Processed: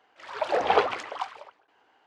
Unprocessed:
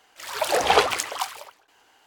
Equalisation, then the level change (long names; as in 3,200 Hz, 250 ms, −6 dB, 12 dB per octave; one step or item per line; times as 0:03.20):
high-pass filter 210 Hz 6 dB per octave
head-to-tape spacing loss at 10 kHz 31 dB
0.0 dB